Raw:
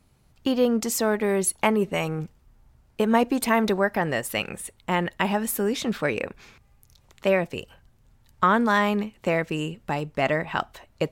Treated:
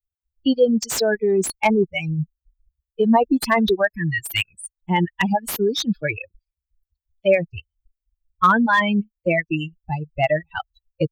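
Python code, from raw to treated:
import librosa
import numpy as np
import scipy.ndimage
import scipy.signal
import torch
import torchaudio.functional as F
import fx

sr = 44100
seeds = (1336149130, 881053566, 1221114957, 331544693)

p1 = fx.bin_expand(x, sr, power=3.0)
p2 = fx.dereverb_blind(p1, sr, rt60_s=0.79)
p3 = fx.spec_repair(p2, sr, seeds[0], start_s=3.97, length_s=0.44, low_hz=350.0, high_hz=950.0, source='both')
p4 = fx.over_compress(p3, sr, threshold_db=-32.0, ratio=-1.0)
p5 = p3 + (p4 * librosa.db_to_amplitude(-2.5))
p6 = fx.slew_limit(p5, sr, full_power_hz=190.0)
y = p6 * librosa.db_to_amplitude(8.0)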